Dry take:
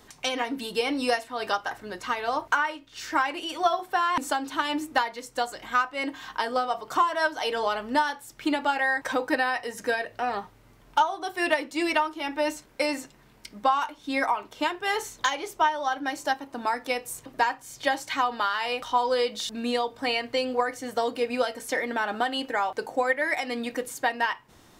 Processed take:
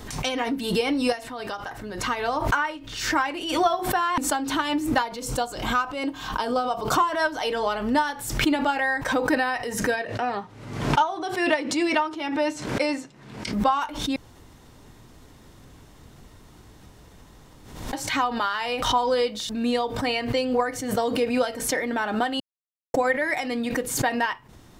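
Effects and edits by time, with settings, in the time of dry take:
1.12–2.03 s: compression 2:1, threshold -34 dBFS
5.02–6.97 s: peaking EQ 1.9 kHz -10 dB 0.34 oct
9.96–13.53 s: band-pass 130–7800 Hz
14.16–17.93 s: room tone
22.40–22.94 s: mute
whole clip: bass shelf 230 Hz +10.5 dB; swell ahead of each attack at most 66 dB/s

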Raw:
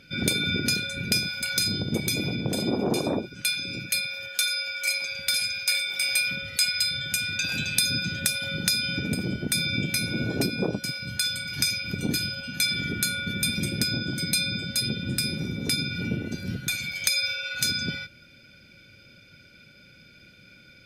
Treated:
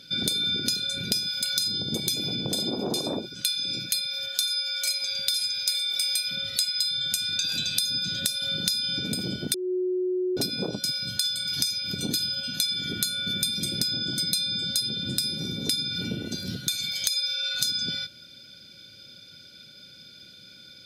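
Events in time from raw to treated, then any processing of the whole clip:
9.54–10.37 s: bleep 366 Hz -20 dBFS
whole clip: high-pass 130 Hz 6 dB/octave; resonant high shelf 3 kHz +6.5 dB, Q 3; compression 4:1, threshold -25 dBFS

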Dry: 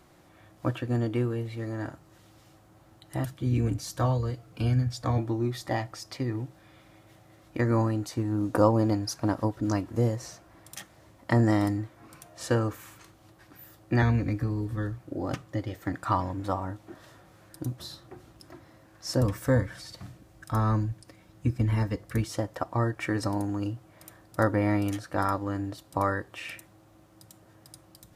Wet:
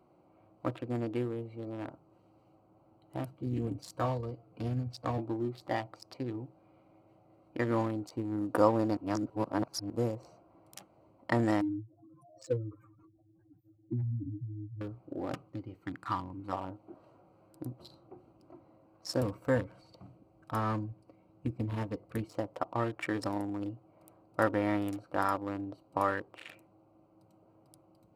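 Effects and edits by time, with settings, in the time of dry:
8.97–9.90 s: reverse
11.61–14.81 s: spectral contrast enhancement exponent 3.8
15.49–16.53 s: peaking EQ 610 Hz -14 dB 1 oct
whole clip: local Wiener filter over 25 samples; high-pass 300 Hz 6 dB/octave; band-stop 6.2 kHz, Q 11; trim -1.5 dB

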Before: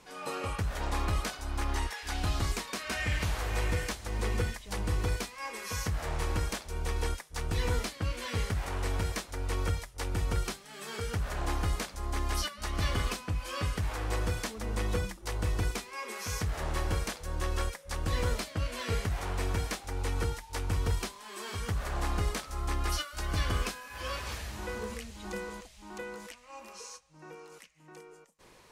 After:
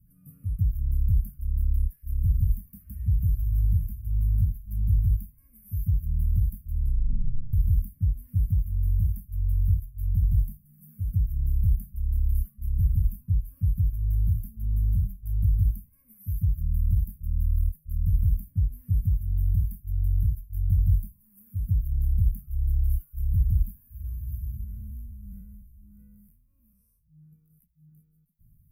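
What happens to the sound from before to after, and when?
6.77 s: tape stop 0.76 s
24.64–27.32 s: spectral blur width 91 ms
whole clip: inverse Chebyshev band-stop 360–7400 Hz, stop band 50 dB; peaking EQ 350 Hz +4 dB 1.4 oct; trim +9 dB

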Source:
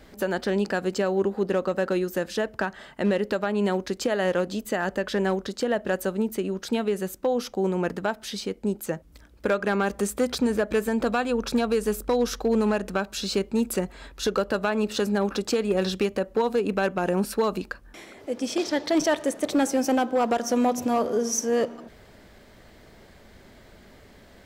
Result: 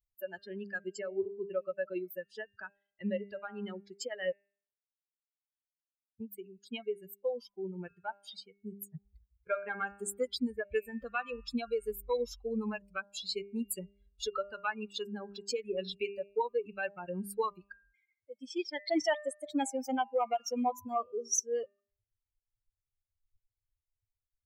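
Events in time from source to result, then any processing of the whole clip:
4.33–6.20 s: mute
8.88–9.47 s: compressor with a negative ratio -33 dBFS, ratio -0.5
whole clip: expander on every frequency bin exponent 3; bass shelf 360 Hz -7.5 dB; de-hum 200.2 Hz, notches 14

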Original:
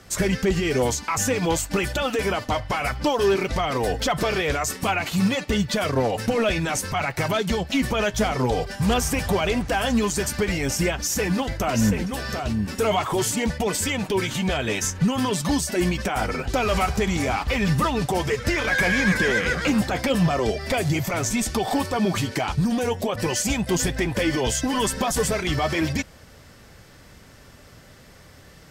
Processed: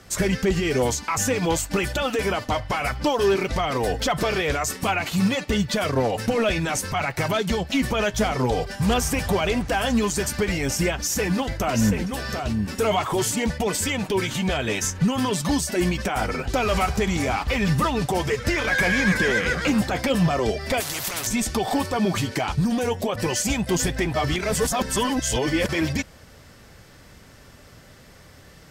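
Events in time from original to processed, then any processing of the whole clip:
20.80–21.27 s: spectrum-flattening compressor 4:1
24.14–25.69 s: reverse

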